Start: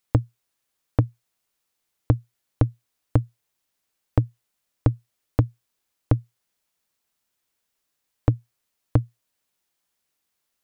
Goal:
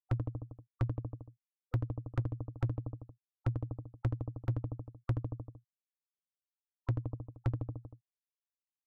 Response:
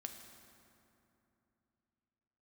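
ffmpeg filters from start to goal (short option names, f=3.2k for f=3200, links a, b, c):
-filter_complex "[0:a]asplit=2[a][b];[b]acompressor=mode=upward:threshold=-25dB:ratio=2.5,volume=2.5dB[c];[a][c]amix=inputs=2:normalize=0,aresample=16000,aresample=44100,afftfilt=real='re*gte(hypot(re,im),0.126)':imag='im*gte(hypot(re,im),0.126)':win_size=1024:overlap=0.75,asplit=2[d][e];[e]aecho=0:1:93|186|279|372|465|558:0.266|0.149|0.0834|0.0467|0.0262|0.0147[f];[d][f]amix=inputs=2:normalize=0,acompressor=threshold=-24dB:ratio=2,asoftclip=type=hard:threshold=-18.5dB,atempo=1.2,volume=-6.5dB"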